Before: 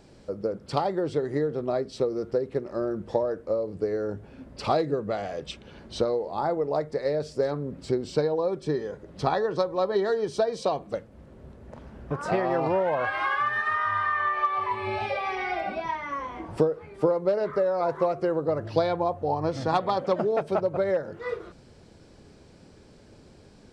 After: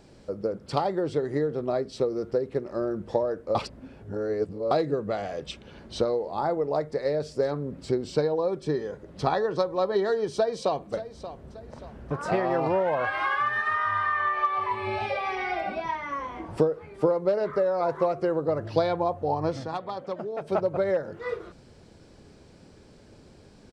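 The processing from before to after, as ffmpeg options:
ffmpeg -i in.wav -filter_complex "[0:a]asplit=2[link_01][link_02];[link_02]afade=type=in:start_time=10.34:duration=0.01,afade=type=out:start_time=10.92:duration=0.01,aecho=0:1:580|1160|1740|2320:0.223872|0.0895488|0.0358195|0.0143278[link_03];[link_01][link_03]amix=inputs=2:normalize=0,asplit=5[link_04][link_05][link_06][link_07][link_08];[link_04]atrim=end=3.552[link_09];[link_05]atrim=start=3.548:end=4.712,asetpts=PTS-STARTPTS,areverse[link_10];[link_06]atrim=start=4.708:end=19.68,asetpts=PTS-STARTPTS,afade=type=out:start_time=14.812:duration=0.16:silence=0.375837[link_11];[link_07]atrim=start=19.68:end=20.37,asetpts=PTS-STARTPTS,volume=-8.5dB[link_12];[link_08]atrim=start=20.37,asetpts=PTS-STARTPTS,afade=type=in:duration=0.16:silence=0.375837[link_13];[link_09][link_10]acrossfade=duration=0.004:curve1=hsin:curve2=hsin[link_14];[link_11][link_12][link_13]concat=n=3:v=0:a=1[link_15];[link_14][link_15]acrossfade=duration=0.004:curve1=hsin:curve2=hsin" out.wav

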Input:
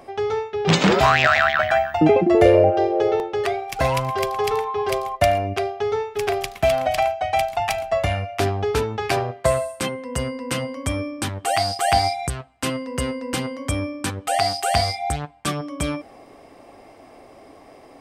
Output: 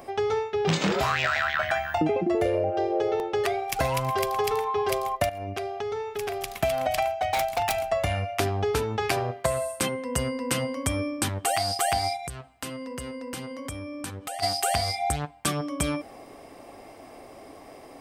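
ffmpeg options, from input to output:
ffmpeg -i in.wav -filter_complex "[0:a]asettb=1/sr,asplit=3[link_01][link_02][link_03];[link_01]atrim=end=0.674[link_04];[link_02]atrim=start=0.67:end=1.98,asetpts=PTS-STARTPTS,afade=type=in:duration=0.004:curve=qsin,afade=type=out:start_time=1.306:duration=0.004:curve=qsin,asplit=2[link_05][link_06];[link_06]adelay=25,volume=-7dB[link_07];[link_05][link_07]amix=inputs=2:normalize=0,atrim=end_sample=57771[link_08];[link_03]atrim=start=1.976[link_09];[link_04][link_08]acrossfade=duration=0.004:curve1=hsin:curve2=qsin[link_10];[link_10][link_09]acrossfade=duration=0.004:curve1=qsin:curve2=hsin,asettb=1/sr,asplit=3[link_11][link_12][link_13];[link_11]atrim=end=5.294[link_14];[link_12]atrim=start=5.29:end=6.58,asetpts=PTS-STARTPTS,afade=type=in:duration=0.004:curve=qsin,afade=type=out:start_time=1.286:duration=0.004:curve=qsin,acompressor=threshold=-29dB:ratio=4:attack=3.2:release=140:knee=1:detection=peak[link_15];[link_13]atrim=start=6.576[link_16];[link_14][link_15]acrossfade=duration=0.004:curve1=hsin:curve2=qsin[link_17];[link_17][link_16]acrossfade=duration=0.004:curve1=qsin:curve2=hsin,asplit=3[link_18][link_19][link_20];[link_18]afade=type=out:start_time=7.21:duration=0.02[link_21];[link_19]aeval=exprs='0.15*(abs(mod(val(0)/0.15+3,4)-2)-1)':channel_layout=same,afade=type=in:start_time=7.21:duration=0.02,afade=type=out:start_time=7.79:duration=0.02[link_22];[link_20]afade=type=in:start_time=7.79:duration=0.02[link_23];[link_21][link_22][link_23]amix=inputs=3:normalize=0,asplit=3[link_24][link_25][link_26];[link_24]afade=type=out:start_time=12.16:duration=0.02[link_27];[link_25]acompressor=threshold=-33dB:ratio=6:attack=3.2:release=140:knee=1:detection=peak,afade=type=in:start_time=12.16:duration=0.02,afade=type=out:start_time=14.42:duration=0.02[link_28];[link_26]afade=type=in:start_time=14.42:duration=0.02[link_29];[link_27][link_28][link_29]amix=inputs=3:normalize=0,highshelf=frequency=9300:gain=10,acompressor=threshold=-22dB:ratio=6" out.wav

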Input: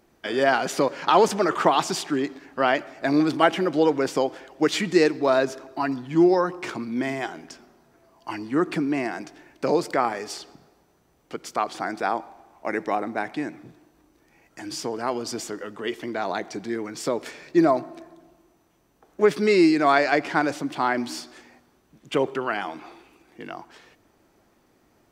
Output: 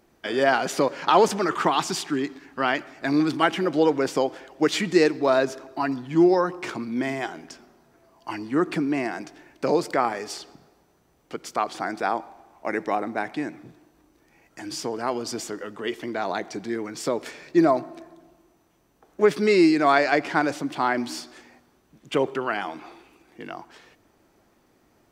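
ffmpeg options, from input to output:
ffmpeg -i in.wav -filter_complex "[0:a]asettb=1/sr,asplit=3[link_01][link_02][link_03];[link_01]atrim=end=1.384[link_04];[link_02]atrim=start=1.38:end=3.64,asetpts=PTS-STARTPTS,afade=type=in:duration=0.004:curve=qsin,afade=type=out:start_time=2.256:duration=0.004:curve=qsin,equalizer=frequency=590:width_type=o:width=0.74:gain=-7[link_05];[link_03]atrim=start=3.636[link_06];[link_04][link_05]acrossfade=duration=0.004:curve1=hsin:curve2=qsin[link_07];[link_07][link_06]acrossfade=duration=0.004:curve1=qsin:curve2=hsin" out.wav

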